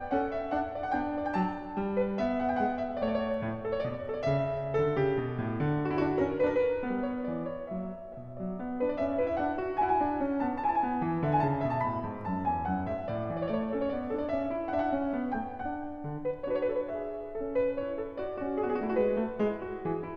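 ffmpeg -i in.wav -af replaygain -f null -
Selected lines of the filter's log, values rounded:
track_gain = +12.1 dB
track_peak = 0.113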